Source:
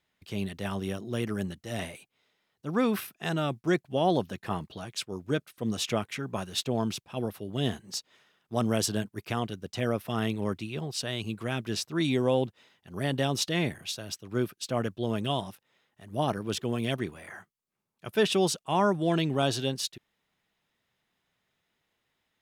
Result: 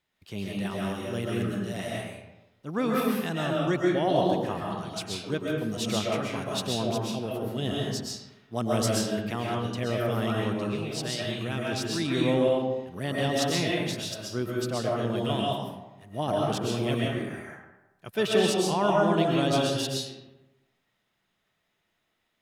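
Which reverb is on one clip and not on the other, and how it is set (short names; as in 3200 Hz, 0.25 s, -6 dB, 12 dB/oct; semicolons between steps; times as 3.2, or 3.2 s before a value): digital reverb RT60 1 s, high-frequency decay 0.6×, pre-delay 90 ms, DRR -3.5 dB; gain -2.5 dB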